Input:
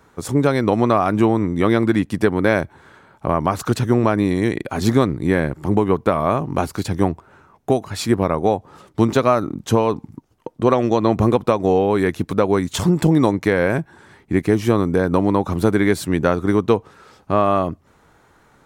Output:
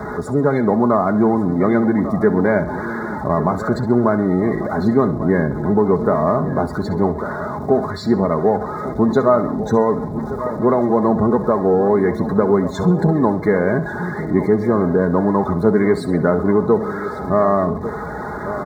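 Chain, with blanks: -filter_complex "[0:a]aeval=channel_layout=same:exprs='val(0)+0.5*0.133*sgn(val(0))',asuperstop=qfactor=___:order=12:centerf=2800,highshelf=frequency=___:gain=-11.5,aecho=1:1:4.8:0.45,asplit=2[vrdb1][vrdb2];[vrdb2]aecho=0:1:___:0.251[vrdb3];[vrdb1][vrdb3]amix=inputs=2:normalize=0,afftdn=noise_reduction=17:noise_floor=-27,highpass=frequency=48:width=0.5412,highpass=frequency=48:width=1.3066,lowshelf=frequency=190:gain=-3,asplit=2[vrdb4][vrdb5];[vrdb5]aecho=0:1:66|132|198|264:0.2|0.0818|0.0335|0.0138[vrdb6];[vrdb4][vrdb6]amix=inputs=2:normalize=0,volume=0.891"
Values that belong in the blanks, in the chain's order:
2.2, 2.7k, 1146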